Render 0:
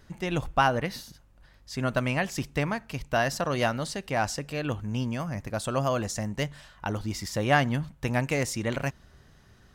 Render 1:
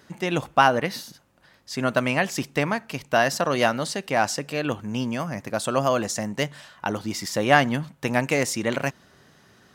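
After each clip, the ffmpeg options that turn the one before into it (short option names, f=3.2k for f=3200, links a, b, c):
-af "highpass=180,volume=5.5dB"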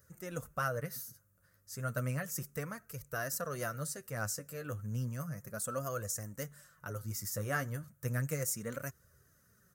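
-af "firequalizer=gain_entry='entry(110,0);entry(230,-15);entry(330,-18);entry(510,-9);entry(830,-26);entry(1300,-7);entry(2300,-20);entry(3300,-24);entry(6200,-5);entry(14000,9)':delay=0.05:min_phase=1,flanger=delay=1.6:depth=9.8:regen=27:speed=0.33:shape=triangular"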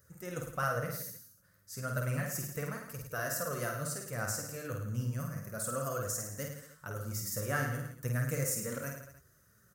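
-af "aecho=1:1:50|105|165.5|232|305.3:0.631|0.398|0.251|0.158|0.1"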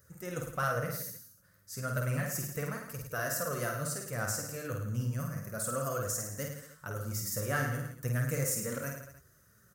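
-af "asoftclip=type=tanh:threshold=-22dB,volume=2dB"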